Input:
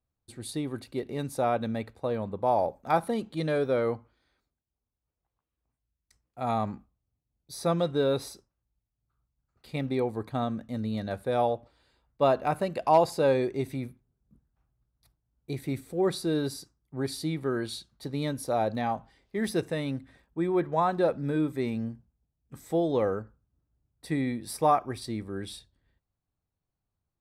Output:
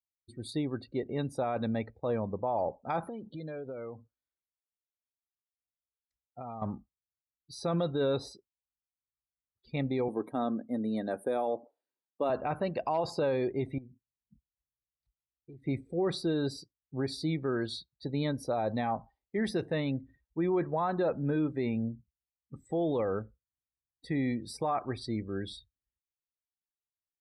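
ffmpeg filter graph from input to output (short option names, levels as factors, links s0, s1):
-filter_complex "[0:a]asettb=1/sr,asplit=3[s0][s1][s2];[s0]atrim=end=3.084[s3];[s1]atrim=start=3.08:end=6.62,asetpts=PTS-STARTPTS,afade=t=in:d=0.004:c=qsin,afade=t=out:st=3.536:d=0.004:c=qsin,bandreject=f=1900:w=29,acompressor=threshold=0.0141:ratio=10:attack=3.2:release=140:knee=1:detection=peak[s4];[s2]atrim=start=6.616[s5];[s3][s4]acrossfade=d=0.004:c1=hsin:c2=qsin[s6];[s6][s5]acrossfade=d=0.004:c1=qsin:c2=hsin,asettb=1/sr,asplit=3[s7][s8][s9];[s7]atrim=end=10.084[s10];[s8]atrim=start=10.08:end=12.3,asetpts=PTS-STARTPTS,afade=t=in:d=0.004:c=qsin,afade=t=out:st=2.216:d=0.004:c=qsin,highpass=f=280:t=q:w=1.6,highshelf=f=7000:t=q:w=1.5:g=12.5[s11];[s9]atrim=start=12.296[s12];[s10][s11]acrossfade=d=0.004:c1=hsin:c2=qsin[s13];[s13][s12]acrossfade=d=0.004:c1=qsin:c2=hsin,asettb=1/sr,asplit=3[s14][s15][s16];[s14]atrim=end=13.784[s17];[s15]atrim=start=13.78:end=15.66,asetpts=PTS-STARTPTS,afade=t=in:d=0.004:c=qsin,afade=t=out:st=1.876:d=0.004:c=qsin,asoftclip=type=hard:threshold=0.0398,acompressor=threshold=0.00501:ratio=8:attack=3.2:release=140:knee=1:detection=peak[s18];[s16]atrim=start=15.656[s19];[s17][s18]acrossfade=d=0.004:c1=hsin:c2=qsin[s20];[s20][s19]acrossfade=d=0.004:c1=qsin:c2=hsin,afftdn=nr=29:nf=-47,lowpass=6600,alimiter=limit=0.0794:level=0:latency=1:release=22"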